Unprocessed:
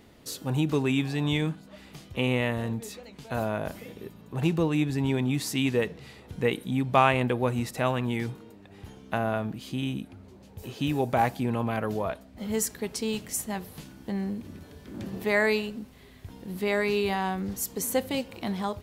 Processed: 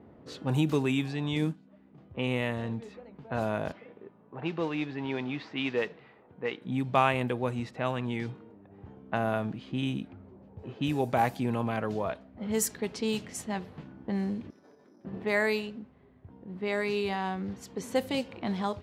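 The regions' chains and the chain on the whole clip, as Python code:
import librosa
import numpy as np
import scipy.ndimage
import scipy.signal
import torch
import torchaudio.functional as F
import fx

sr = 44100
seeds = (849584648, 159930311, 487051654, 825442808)

y = fx.chain(x, sr, fx.cvsd(bps=64000),
    fx.peak_eq(hz=250.0, db=9.0, octaves=1.4),
    fx.upward_expand(threshold_db=-37.0, expansion=1.5), at=(1.36, 1.98))
y = fx.chain(y, sr, fx.highpass(hz=620.0, slope=6),
    fx.mod_noise(seeds[0], snr_db=15),
    fx.air_absorb(metres=200.0), at=(3.72, 6.62))
y = fx.chain(y, sr, fx.level_steps(step_db=17),
    fx.highpass(hz=320.0, slope=12),
    fx.resample_bad(factor=8, down='filtered', up='zero_stuff'), at=(14.5, 15.05))
y = fx.rider(y, sr, range_db=10, speed_s=2.0)
y = scipy.signal.sosfilt(scipy.signal.butter(2, 81.0, 'highpass', fs=sr, output='sos'), y)
y = fx.env_lowpass(y, sr, base_hz=900.0, full_db=-21.5)
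y = F.gain(torch.from_numpy(y), -2.5).numpy()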